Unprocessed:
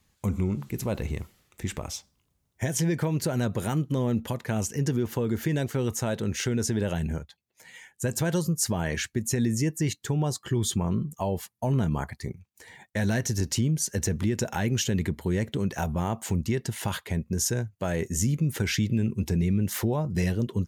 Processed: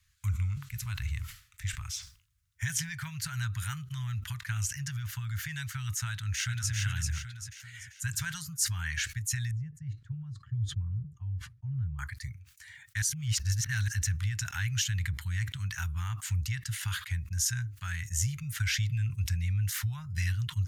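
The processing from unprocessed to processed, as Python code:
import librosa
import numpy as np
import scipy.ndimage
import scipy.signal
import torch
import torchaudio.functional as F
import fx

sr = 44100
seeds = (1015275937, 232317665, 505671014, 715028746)

y = fx.echo_throw(x, sr, start_s=6.09, length_s=0.62, ms=390, feedback_pct=45, wet_db=-3.0)
y = fx.bandpass_q(y, sr, hz=110.0, q=1.0, at=(9.51, 11.99))
y = fx.edit(y, sr, fx.reverse_span(start_s=13.02, length_s=0.86), tone=tone)
y = scipy.signal.sosfilt(scipy.signal.cheby1(3, 1.0, [110.0, 1400.0], 'bandstop', fs=sr, output='sos'), y)
y = fx.high_shelf(y, sr, hz=8300.0, db=-4.0)
y = fx.sustainer(y, sr, db_per_s=130.0)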